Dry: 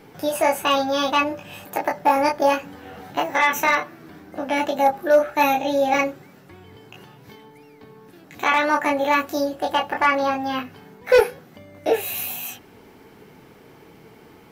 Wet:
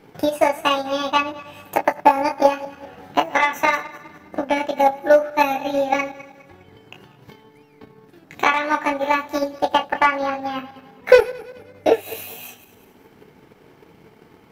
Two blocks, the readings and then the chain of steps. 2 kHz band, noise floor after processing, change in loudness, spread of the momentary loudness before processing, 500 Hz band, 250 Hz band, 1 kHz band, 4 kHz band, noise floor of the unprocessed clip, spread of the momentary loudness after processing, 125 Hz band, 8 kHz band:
0.0 dB, -52 dBFS, +1.0 dB, 13 LU, +2.0 dB, 0.0 dB, +1.5 dB, -0.5 dB, -49 dBFS, 16 LU, -1.0 dB, -4.0 dB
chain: regenerating reverse delay 0.102 s, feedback 58%, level -11.5 dB; transient shaper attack +10 dB, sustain -4 dB; high shelf 6300 Hz -5 dB; gain -3 dB

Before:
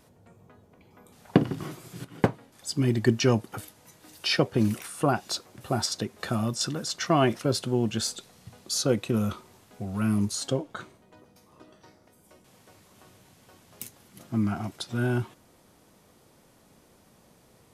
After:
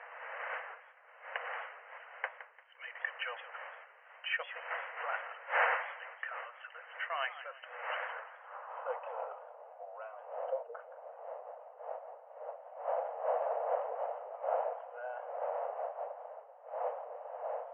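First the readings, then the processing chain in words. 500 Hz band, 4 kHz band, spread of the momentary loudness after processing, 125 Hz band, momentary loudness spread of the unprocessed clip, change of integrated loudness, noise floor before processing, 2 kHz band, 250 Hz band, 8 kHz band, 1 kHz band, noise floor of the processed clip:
-7.5 dB, -16.0 dB, 15 LU, under -40 dB, 17 LU, -12.0 dB, -60 dBFS, 0.0 dB, under -40 dB, under -40 dB, -2.5 dB, -58 dBFS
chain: wind noise 590 Hz -28 dBFS; brick-wall FIR band-pass 460–3100 Hz; notch 2400 Hz, Q 23; band-pass sweep 1900 Hz -> 670 Hz, 7.96–9.46; warbling echo 0.173 s, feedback 33%, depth 186 cents, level -13.5 dB; gain -1 dB

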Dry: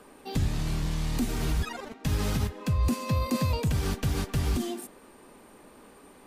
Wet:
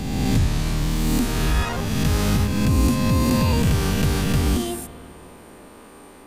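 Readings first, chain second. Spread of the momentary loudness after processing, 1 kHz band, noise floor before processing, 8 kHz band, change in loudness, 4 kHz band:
5 LU, +8.0 dB, -54 dBFS, +9.5 dB, +8.5 dB, +9.0 dB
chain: spectral swells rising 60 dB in 1.83 s; spring tank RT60 3 s, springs 53 ms, DRR 15 dB; gain +4.5 dB

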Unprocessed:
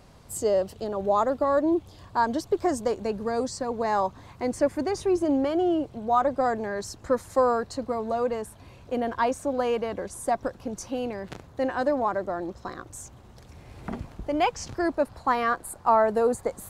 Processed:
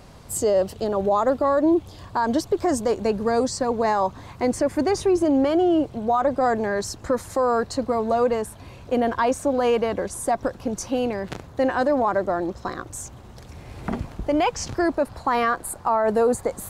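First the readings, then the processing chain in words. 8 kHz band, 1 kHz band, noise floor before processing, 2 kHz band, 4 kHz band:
+6.5 dB, +2.5 dB, -50 dBFS, +4.0 dB, +5.0 dB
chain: limiter -19 dBFS, peak gain reduction 9.5 dB; gain +6.5 dB

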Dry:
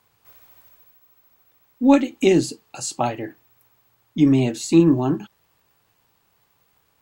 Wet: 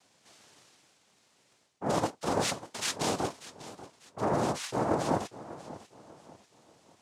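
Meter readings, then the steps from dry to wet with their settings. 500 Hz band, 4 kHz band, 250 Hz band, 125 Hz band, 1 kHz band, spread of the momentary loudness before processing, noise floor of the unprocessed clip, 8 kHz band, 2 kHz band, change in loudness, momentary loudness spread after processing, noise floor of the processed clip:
-9.5 dB, -3.0 dB, -17.5 dB, -12.5 dB, -3.0 dB, 15 LU, -66 dBFS, -5.0 dB, -5.5 dB, -12.0 dB, 17 LU, -68 dBFS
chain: high shelf 5900 Hz +7.5 dB; reverse; compressor 16:1, threshold -26 dBFS, peak gain reduction 19 dB; reverse; noise vocoder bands 2; warbling echo 0.592 s, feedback 36%, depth 100 cents, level -16 dB

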